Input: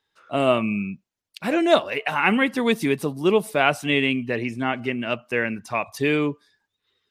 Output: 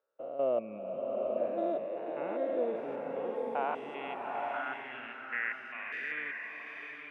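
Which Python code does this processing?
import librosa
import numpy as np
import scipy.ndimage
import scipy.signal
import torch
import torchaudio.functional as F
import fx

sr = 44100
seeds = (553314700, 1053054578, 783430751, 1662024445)

y = fx.spec_steps(x, sr, hold_ms=200)
y = fx.filter_sweep_bandpass(y, sr, from_hz=530.0, to_hz=1900.0, start_s=2.58, end_s=5.15, q=5.0)
y = fx.rev_bloom(y, sr, seeds[0], attack_ms=860, drr_db=1.0)
y = y * 10.0 ** (-1.0 / 20.0)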